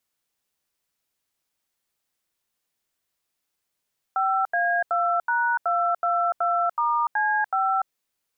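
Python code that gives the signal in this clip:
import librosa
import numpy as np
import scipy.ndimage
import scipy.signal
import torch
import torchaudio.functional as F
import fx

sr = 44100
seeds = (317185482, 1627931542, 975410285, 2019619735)

y = fx.dtmf(sr, digits='5A2#222*C5', tone_ms=292, gap_ms=82, level_db=-22.5)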